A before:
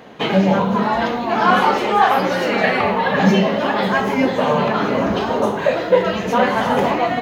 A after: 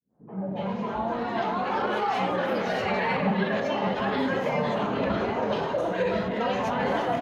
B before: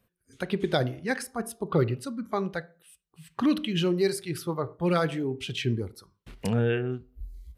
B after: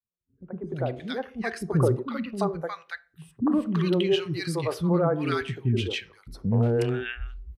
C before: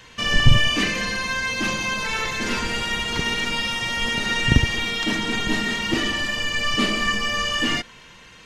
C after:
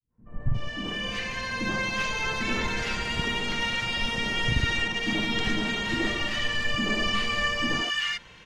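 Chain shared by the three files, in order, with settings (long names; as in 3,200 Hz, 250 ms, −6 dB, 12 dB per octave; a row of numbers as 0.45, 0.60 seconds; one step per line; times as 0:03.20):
fade in at the beginning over 1.58 s
low-pass filter 3,200 Hz 6 dB per octave
brickwall limiter −13 dBFS
pitch vibrato 12 Hz 12 cents
three-band delay without the direct sound lows, mids, highs 80/360 ms, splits 300/1,200 Hz
loudness normalisation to −27 LKFS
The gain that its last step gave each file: −3.5, +4.5, −1.0 decibels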